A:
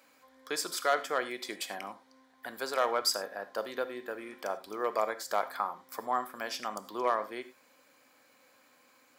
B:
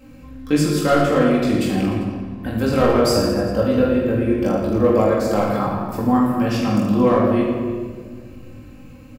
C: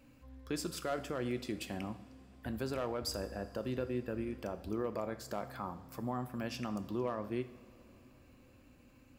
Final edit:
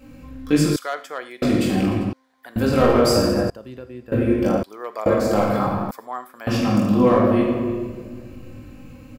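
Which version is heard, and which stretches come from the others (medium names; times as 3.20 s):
B
0.76–1.42 s: from A
2.13–2.56 s: from A
3.50–4.12 s: from C
4.63–5.06 s: from A
5.91–6.47 s: from A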